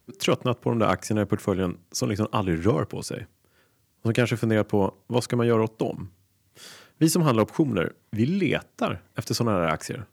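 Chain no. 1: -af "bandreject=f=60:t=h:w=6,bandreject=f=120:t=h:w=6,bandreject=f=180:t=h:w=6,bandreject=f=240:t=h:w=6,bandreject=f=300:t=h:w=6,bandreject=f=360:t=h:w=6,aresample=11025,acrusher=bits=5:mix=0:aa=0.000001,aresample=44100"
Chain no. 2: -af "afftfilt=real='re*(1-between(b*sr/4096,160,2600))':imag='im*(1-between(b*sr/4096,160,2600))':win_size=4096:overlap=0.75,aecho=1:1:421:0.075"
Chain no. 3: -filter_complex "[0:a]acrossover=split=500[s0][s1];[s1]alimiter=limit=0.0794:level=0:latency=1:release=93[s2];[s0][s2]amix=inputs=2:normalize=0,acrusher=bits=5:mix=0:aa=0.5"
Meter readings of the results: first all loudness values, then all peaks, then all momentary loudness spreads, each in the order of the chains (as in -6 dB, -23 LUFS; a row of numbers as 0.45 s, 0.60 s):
-25.5 LUFS, -32.5 LUFS, -26.0 LUFS; -6.0 dBFS, -12.5 dBFS, -8.0 dBFS; 9 LU, 12 LU, 8 LU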